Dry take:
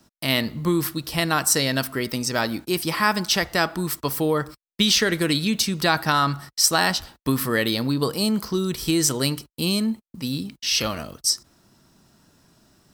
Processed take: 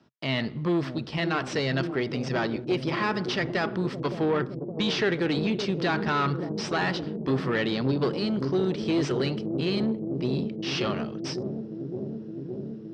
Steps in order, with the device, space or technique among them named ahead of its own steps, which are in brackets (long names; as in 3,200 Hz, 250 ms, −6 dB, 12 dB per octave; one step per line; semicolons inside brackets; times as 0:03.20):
analogue delay pedal into a guitar amplifier (bucket-brigade delay 565 ms, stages 2,048, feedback 84%, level −9 dB; tube saturation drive 21 dB, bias 0.65; loudspeaker in its box 97–4,300 Hz, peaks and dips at 130 Hz +5 dB, 400 Hz +6 dB, 4,100 Hz −4 dB)